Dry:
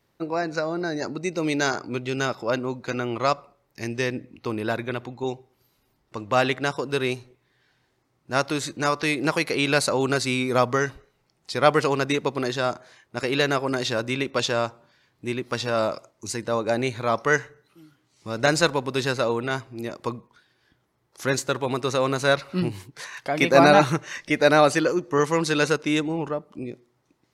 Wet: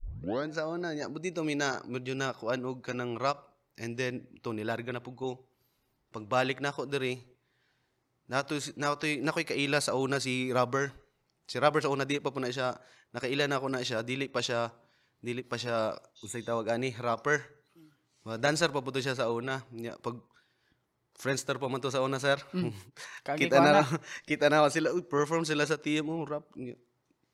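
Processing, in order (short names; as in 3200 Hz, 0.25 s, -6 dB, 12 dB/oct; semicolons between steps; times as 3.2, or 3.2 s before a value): tape start at the beginning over 0.49 s; spectral repair 16.19–16.53, 2700–6600 Hz after; ending taper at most 510 dB/s; gain -7 dB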